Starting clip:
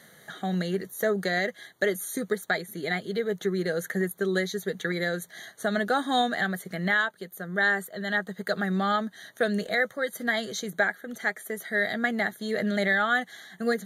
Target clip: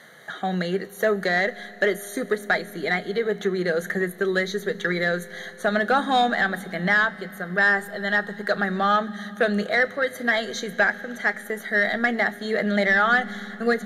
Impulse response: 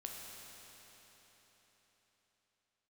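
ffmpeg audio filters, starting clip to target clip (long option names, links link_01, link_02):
-filter_complex "[0:a]asplit=2[link_01][link_02];[link_02]highpass=frequency=720:poles=1,volume=10dB,asoftclip=type=tanh:threshold=-11.5dB[link_03];[link_01][link_03]amix=inputs=2:normalize=0,lowpass=frequency=2100:poles=1,volume=-6dB,asplit=2[link_04][link_05];[link_05]asubboost=boost=7:cutoff=210[link_06];[1:a]atrim=start_sample=2205,adelay=33[link_07];[link_06][link_07]afir=irnorm=-1:irlink=0,volume=-12.5dB[link_08];[link_04][link_08]amix=inputs=2:normalize=0,volume=3.5dB"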